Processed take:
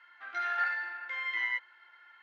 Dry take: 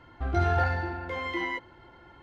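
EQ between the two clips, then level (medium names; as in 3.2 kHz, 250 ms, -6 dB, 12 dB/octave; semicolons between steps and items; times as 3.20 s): resonant high-pass 1.7 kHz, resonance Q 2.5; distance through air 82 m; -3.5 dB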